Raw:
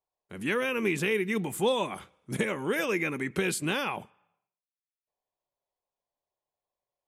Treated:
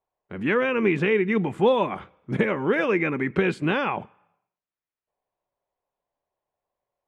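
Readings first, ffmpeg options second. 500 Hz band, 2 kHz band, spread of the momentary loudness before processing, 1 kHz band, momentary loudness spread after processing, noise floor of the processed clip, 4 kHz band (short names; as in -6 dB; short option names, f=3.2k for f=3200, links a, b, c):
+7.0 dB, +4.0 dB, 8 LU, +6.5 dB, 9 LU, under -85 dBFS, -1.5 dB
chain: -af "lowpass=2.1k,volume=7dB"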